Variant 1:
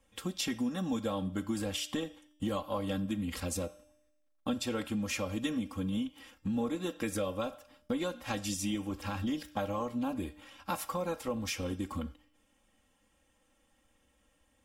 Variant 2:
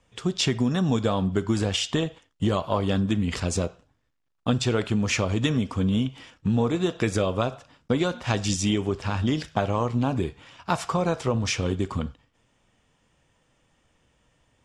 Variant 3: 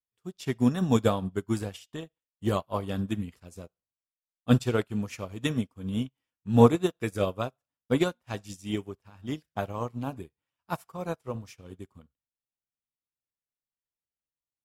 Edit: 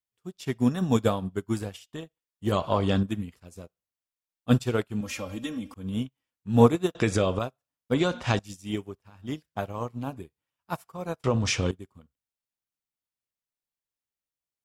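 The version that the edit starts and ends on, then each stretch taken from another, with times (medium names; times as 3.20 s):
3
2.52–3.03 s: from 2
5.01–5.74 s: from 1
6.95–7.39 s: from 2
7.94–8.39 s: from 2
11.24–11.71 s: from 2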